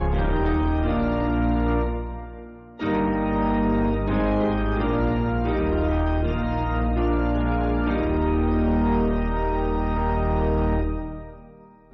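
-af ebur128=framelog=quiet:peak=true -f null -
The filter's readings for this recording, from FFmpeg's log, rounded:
Integrated loudness:
  I:         -23.5 LUFS
  Threshold: -33.9 LUFS
Loudness range:
  LRA:         1.4 LU
  Threshold: -43.7 LUFS
  LRA low:   -24.5 LUFS
  LRA high:  -23.1 LUFS
True peak:
  Peak:      -15.2 dBFS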